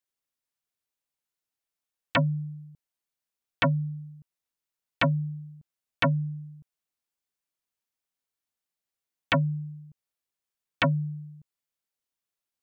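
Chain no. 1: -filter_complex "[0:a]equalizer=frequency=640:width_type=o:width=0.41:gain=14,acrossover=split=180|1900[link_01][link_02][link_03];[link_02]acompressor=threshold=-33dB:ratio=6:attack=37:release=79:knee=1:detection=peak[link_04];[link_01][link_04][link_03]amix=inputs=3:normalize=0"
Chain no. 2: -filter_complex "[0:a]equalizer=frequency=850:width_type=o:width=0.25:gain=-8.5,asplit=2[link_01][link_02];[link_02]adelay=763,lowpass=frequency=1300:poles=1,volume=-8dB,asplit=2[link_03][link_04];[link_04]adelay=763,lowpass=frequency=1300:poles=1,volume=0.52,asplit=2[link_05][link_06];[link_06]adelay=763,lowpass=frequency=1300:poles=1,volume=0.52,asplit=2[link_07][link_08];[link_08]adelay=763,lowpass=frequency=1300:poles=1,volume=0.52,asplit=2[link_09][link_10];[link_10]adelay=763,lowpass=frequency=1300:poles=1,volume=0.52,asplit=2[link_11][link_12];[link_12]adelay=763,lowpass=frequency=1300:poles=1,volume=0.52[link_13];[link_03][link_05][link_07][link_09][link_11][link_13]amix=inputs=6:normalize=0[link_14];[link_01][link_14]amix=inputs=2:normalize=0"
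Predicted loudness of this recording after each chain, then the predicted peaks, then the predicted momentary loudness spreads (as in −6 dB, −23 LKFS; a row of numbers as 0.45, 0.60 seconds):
−30.0, −31.0 LKFS; −10.0, −14.5 dBFS; 18, 20 LU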